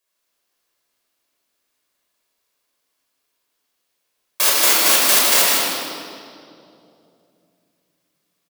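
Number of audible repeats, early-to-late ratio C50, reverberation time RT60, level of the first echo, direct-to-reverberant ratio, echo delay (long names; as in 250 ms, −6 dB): 1, −3.5 dB, 2.6 s, −5.0 dB, −6.0 dB, 155 ms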